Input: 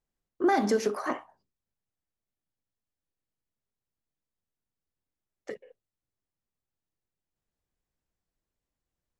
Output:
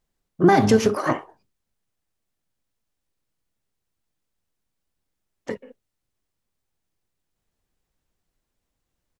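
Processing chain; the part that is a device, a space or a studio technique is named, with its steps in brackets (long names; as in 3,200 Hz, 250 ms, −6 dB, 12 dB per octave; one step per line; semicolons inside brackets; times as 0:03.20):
octave pedal (pitch-shifted copies added −12 semitones −5 dB)
level +7.5 dB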